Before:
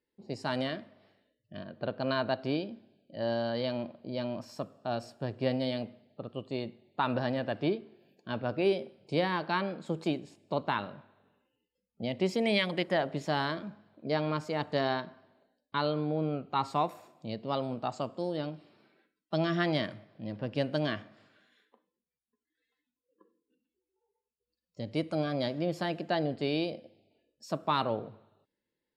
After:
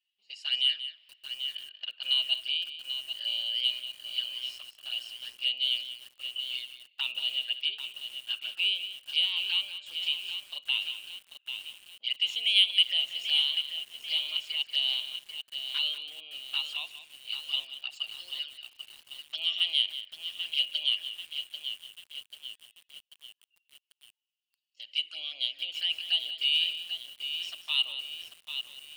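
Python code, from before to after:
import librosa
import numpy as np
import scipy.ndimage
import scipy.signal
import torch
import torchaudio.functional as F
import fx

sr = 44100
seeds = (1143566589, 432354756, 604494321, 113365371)

p1 = fx.env_flanger(x, sr, rest_ms=5.5, full_db=-27.5)
p2 = fx.highpass_res(p1, sr, hz=2900.0, q=14.0)
p3 = 10.0 ** (-19.5 / 20.0) * np.tanh(p2 / 10.0 ** (-19.5 / 20.0))
p4 = p2 + F.gain(torch.from_numpy(p3), -5.0).numpy()
p5 = p4 + 10.0 ** (-12.0 / 20.0) * np.pad(p4, (int(186 * sr / 1000.0), 0))[:len(p4)]
p6 = fx.echo_crushed(p5, sr, ms=789, feedback_pct=55, bits=7, wet_db=-8)
y = F.gain(torch.from_numpy(p6), -3.5).numpy()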